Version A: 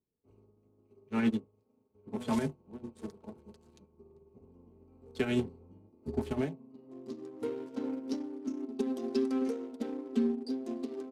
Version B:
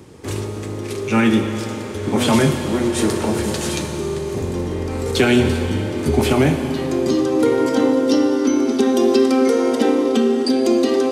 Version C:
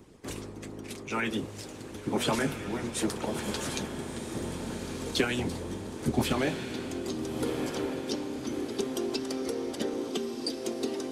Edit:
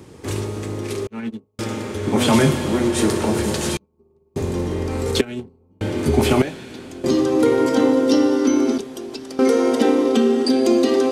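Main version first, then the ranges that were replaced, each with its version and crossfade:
B
1.07–1.59 from A
3.77–4.36 from A
5.21–5.81 from A
6.42–7.04 from C
8.78–9.39 from C

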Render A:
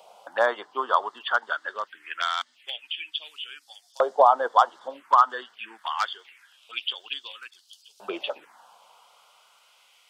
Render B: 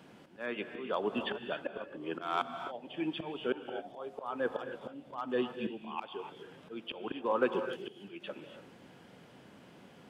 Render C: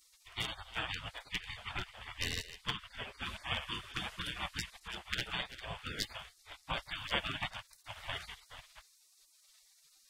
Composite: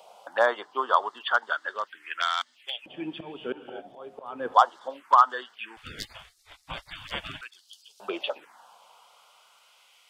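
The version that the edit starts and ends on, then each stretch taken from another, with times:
A
2.86–4.54 from B
5.77–7.41 from C

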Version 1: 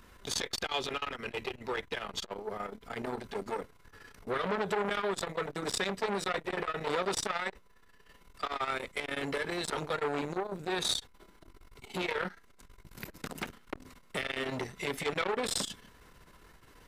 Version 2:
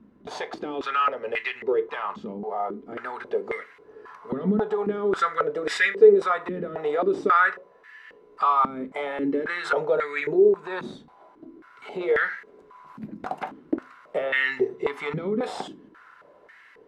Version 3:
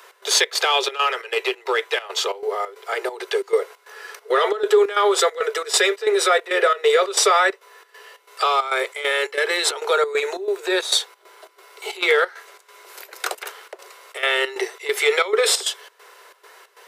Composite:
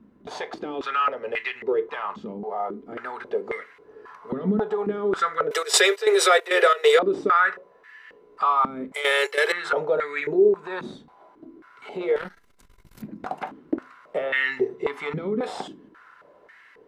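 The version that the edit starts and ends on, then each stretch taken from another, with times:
2
5.51–6.99 from 3
8.94–9.52 from 3
12.16–13.02 from 1

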